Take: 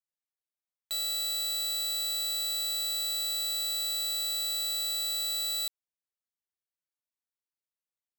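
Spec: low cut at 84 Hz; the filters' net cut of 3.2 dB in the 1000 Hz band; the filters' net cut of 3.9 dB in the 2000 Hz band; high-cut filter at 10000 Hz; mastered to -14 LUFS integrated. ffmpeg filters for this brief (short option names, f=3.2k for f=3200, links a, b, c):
-af "highpass=84,lowpass=10k,equalizer=f=1k:t=o:g=-3,equalizer=f=2k:t=o:g=-4.5,volume=16.5dB"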